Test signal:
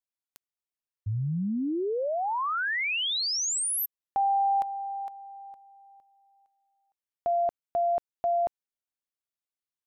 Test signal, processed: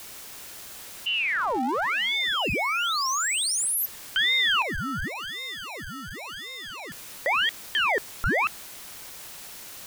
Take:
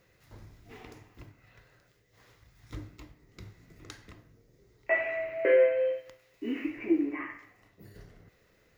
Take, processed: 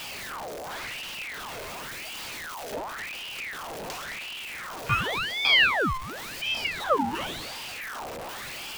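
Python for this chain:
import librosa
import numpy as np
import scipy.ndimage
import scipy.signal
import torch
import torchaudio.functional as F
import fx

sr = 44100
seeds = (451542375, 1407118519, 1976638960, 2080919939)

y = x + 0.5 * 10.0 ** (-32.5 / 20.0) * np.sign(x)
y = fx.ring_lfo(y, sr, carrier_hz=1700.0, swing_pct=70, hz=0.92)
y = y * 10.0 ** (3.5 / 20.0)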